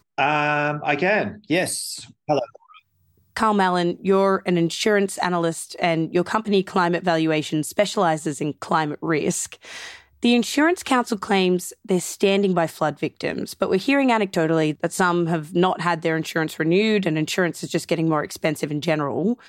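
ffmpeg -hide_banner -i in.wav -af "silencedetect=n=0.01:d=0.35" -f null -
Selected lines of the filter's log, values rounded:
silence_start: 2.78
silence_end: 3.36 | silence_duration: 0.58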